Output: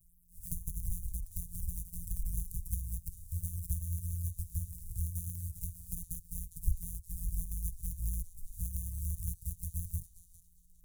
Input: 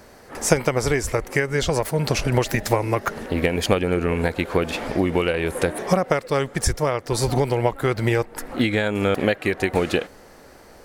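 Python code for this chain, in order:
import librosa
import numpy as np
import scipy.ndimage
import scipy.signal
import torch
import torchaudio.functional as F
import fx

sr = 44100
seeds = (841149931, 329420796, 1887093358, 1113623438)

p1 = np.r_[np.sort(x[:len(x) // 256 * 256].reshape(-1, 256), axis=1).ravel(), x[len(x) // 256 * 256:]]
p2 = fx.env_flanger(p1, sr, rest_ms=6.8, full_db=-17.5)
p3 = scipy.signal.sosfilt(scipy.signal.cheby2(4, 80, [440.0, 2200.0], 'bandstop', fs=sr, output='sos'), p2)
p4 = p3 + fx.echo_banded(p3, sr, ms=405, feedback_pct=53, hz=2500.0, wet_db=-4.5, dry=0)
y = p4 * 10.0 ** (-3.5 / 20.0)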